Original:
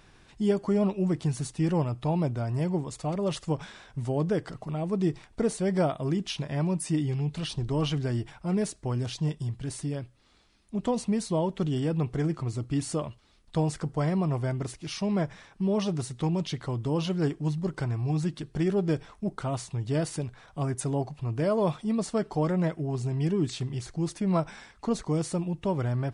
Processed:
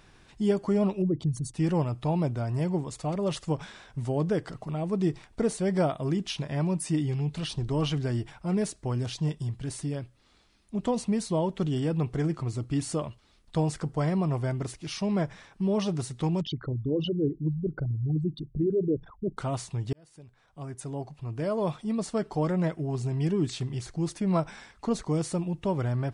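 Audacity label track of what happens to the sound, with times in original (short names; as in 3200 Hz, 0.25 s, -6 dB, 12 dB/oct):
1.020000	1.540000	formant sharpening exponent 2
16.410000	19.370000	formant sharpening exponent 3
19.930000	23.210000	fade in equal-power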